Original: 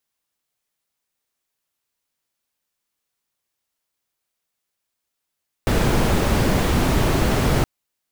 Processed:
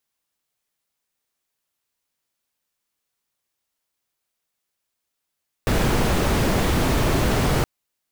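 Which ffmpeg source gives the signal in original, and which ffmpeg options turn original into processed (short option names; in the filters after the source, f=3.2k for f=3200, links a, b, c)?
-f lavfi -i "anoisesrc=c=brown:a=0.624:d=1.97:r=44100:seed=1"
-af "aeval=exprs='0.2*(abs(mod(val(0)/0.2+3,4)-2)-1)':c=same"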